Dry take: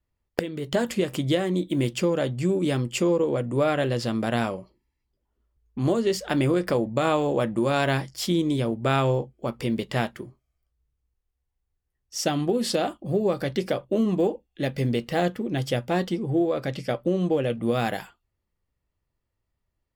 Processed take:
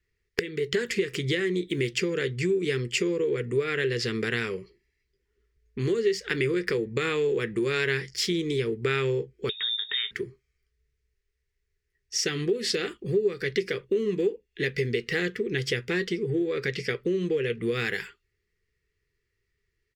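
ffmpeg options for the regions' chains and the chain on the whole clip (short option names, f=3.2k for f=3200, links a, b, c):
-filter_complex "[0:a]asettb=1/sr,asplit=3[a][b][c];[a]atrim=end=9.494[d];[b]atrim=start=9.49:end=10.11,asetpts=PTS-STARTPTS,afade=t=in:d=0.004:c=qsin,afade=t=out:st=0.616:d=0.004:c=qsin,lowshelf=f=230:g=11,acompressor=threshold=-33dB:ratio=3:attack=3.2:release=140:knee=1:detection=peak,lowpass=f=3.2k:t=q:w=0.5098,lowpass=f=3.2k:t=q:w=0.6013,lowpass=f=3.2k:t=q:w=0.9,lowpass=f=3.2k:t=q:w=2.563,afreqshift=-3800[e];[c]atrim=start=10.106[f];[d][e]acrossfade=d=0.004:c1=hsin:c2=qsin[g];[g][f]acrossfade=d=0.004:c1=qsin:c2=hsin,firequalizer=gain_entry='entry(160,0);entry(280,-7);entry(420,14);entry(610,-20);entry(1300,1);entry(1900,14);entry(3100,5);entry(5200,8);entry(8700,0);entry(12000,-4)':delay=0.05:min_phase=1,acompressor=threshold=-26dB:ratio=2.5"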